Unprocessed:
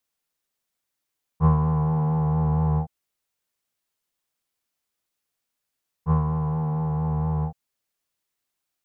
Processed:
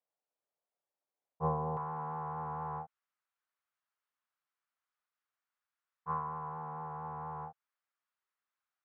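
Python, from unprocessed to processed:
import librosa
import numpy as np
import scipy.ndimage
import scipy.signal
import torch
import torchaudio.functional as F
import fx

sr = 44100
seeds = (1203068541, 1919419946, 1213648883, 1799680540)

y = fx.bandpass_q(x, sr, hz=fx.steps((0.0, 630.0), (1.77, 1300.0)), q=1.9)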